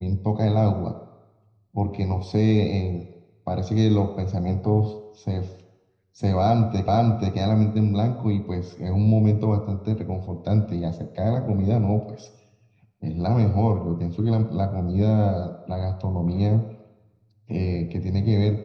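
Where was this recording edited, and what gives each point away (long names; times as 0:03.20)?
0:06.88: the same again, the last 0.48 s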